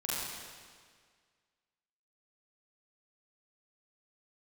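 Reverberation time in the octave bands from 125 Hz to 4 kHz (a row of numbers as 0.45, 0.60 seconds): 1.8, 1.8, 1.8, 1.8, 1.8, 1.7 seconds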